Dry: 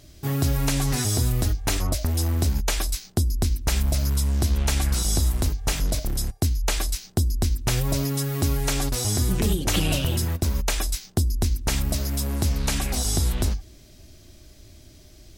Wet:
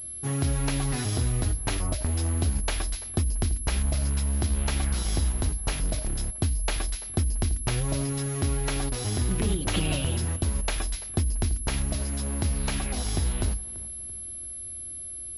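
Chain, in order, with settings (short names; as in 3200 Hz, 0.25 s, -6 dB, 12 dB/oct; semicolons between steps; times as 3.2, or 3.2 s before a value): darkening echo 0.337 s, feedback 40%, low-pass 2700 Hz, level -18 dB; pulse-width modulation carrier 11000 Hz; gain -3.5 dB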